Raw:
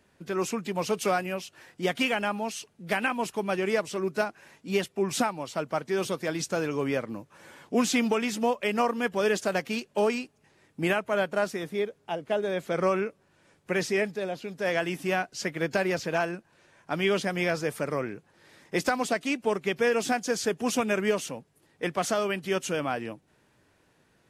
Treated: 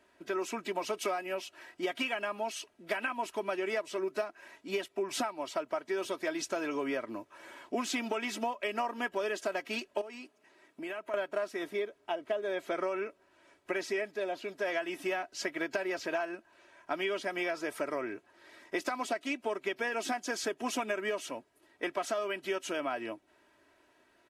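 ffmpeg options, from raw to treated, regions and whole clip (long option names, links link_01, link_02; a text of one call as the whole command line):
ffmpeg -i in.wav -filter_complex "[0:a]asettb=1/sr,asplit=3[link_01][link_02][link_03];[link_01]atrim=end=10.014[link_04];[link_02]atrim=start=10.01:end=11.14,asetpts=PTS-STARTPTS,afade=type=in:duration=0.004:curve=qsin,afade=type=out:start_time=1.126:duration=0.004:curve=qsin,highpass=frequency=130:width=0.5412,highpass=frequency=130:width=1.3066,acompressor=threshold=-38dB:ratio=4:attack=3.2:release=140:knee=1:detection=peak[link_05];[link_03]atrim=start=11.136[link_06];[link_04][link_05]acrossfade=duration=0.004:curve1=hsin:curve2=qsin[link_07];[link_07][link_06]acrossfade=duration=0.004:curve1=qsin:curve2=hsin,bass=frequency=250:gain=-13,treble=frequency=4000:gain=-6,aecho=1:1:3.1:0.63,acompressor=threshold=-30dB:ratio=6" out.wav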